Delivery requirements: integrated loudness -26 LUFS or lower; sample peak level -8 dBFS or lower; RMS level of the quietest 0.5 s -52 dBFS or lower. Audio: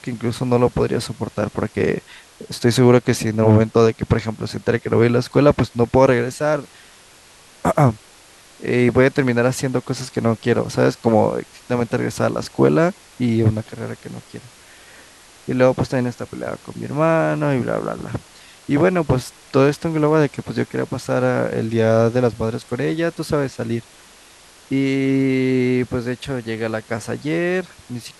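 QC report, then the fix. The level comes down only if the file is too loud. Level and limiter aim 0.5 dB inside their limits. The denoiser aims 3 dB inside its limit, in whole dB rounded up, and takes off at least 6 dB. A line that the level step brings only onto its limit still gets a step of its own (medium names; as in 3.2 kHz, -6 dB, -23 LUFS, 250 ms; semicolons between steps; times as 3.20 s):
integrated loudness -19.0 LUFS: fail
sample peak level -2.0 dBFS: fail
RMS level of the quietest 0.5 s -47 dBFS: fail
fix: trim -7.5 dB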